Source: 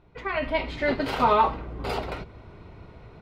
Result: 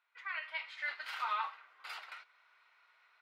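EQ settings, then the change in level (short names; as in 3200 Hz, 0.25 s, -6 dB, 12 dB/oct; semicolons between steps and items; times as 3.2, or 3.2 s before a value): ladder high-pass 1200 Hz, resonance 35%; -3.5 dB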